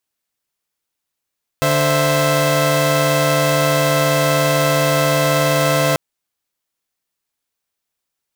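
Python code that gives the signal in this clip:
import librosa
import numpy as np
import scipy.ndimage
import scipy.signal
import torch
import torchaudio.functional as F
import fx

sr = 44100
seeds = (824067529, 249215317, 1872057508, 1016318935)

y = fx.chord(sr, length_s=4.34, notes=(50, 72, 76), wave='saw', level_db=-15.5)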